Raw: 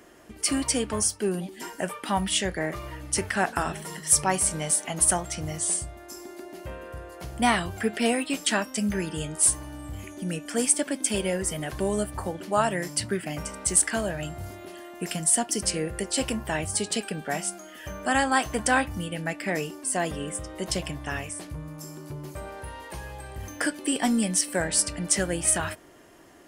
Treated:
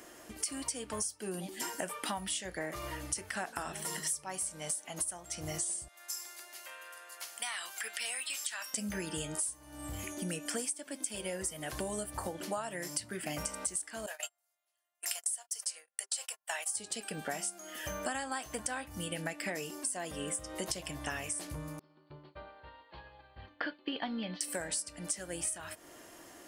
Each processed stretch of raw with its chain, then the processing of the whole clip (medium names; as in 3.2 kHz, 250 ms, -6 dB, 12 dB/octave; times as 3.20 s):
5.88–8.74 s: high-pass 1.4 kHz + compression 2.5:1, threshold -36 dBFS
14.06–16.76 s: high-pass 630 Hz 24 dB/octave + tilt EQ +2 dB/octave + gate -36 dBFS, range -42 dB
21.79–24.41 s: rippled Chebyshev low-pass 4.5 kHz, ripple 3 dB + expander -33 dBFS
whole clip: tone controls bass -6 dB, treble +6 dB; band-stop 400 Hz, Q 12; compression 20:1, threshold -33 dBFS